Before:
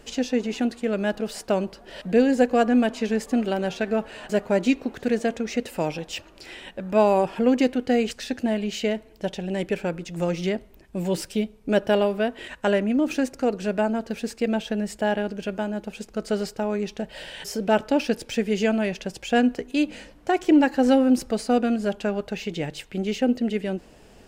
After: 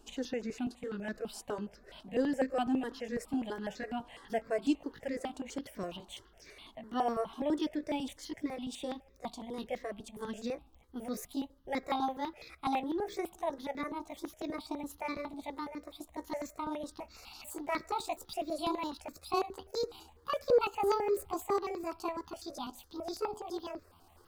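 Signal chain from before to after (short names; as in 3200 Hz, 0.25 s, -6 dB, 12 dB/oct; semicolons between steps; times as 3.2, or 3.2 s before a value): gliding pitch shift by +9.5 st starting unshifted; hard clip -8.5 dBFS, distortion -48 dB; step phaser 12 Hz 530–3000 Hz; gain -8 dB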